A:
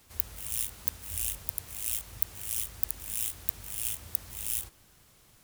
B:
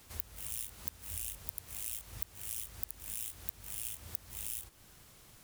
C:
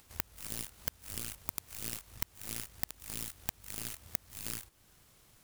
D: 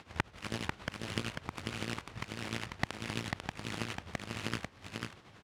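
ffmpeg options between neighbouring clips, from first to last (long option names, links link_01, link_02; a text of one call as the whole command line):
ffmpeg -i in.wav -af "acompressor=threshold=-41dB:ratio=3,volume=2dB" out.wav
ffmpeg -i in.wav -af "acompressor=mode=upward:threshold=-54dB:ratio=2.5,aeval=exprs='0.211*(cos(1*acos(clip(val(0)/0.211,-1,1)))-cos(1*PI/2))+0.0596*(cos(3*acos(clip(val(0)/0.211,-1,1)))-cos(3*PI/2))+0.0168*(cos(6*acos(clip(val(0)/0.211,-1,1)))-cos(6*PI/2))':channel_layout=same,aeval=exprs='0.251*sin(PI/2*2*val(0)/0.251)':channel_layout=same,volume=1dB" out.wav
ffmpeg -i in.wav -filter_complex "[0:a]tremolo=f=11:d=0.72,highpass=100,lowpass=2900,asplit=2[link_01][link_02];[link_02]aecho=0:1:494:0.631[link_03];[link_01][link_03]amix=inputs=2:normalize=0,volume=13.5dB" out.wav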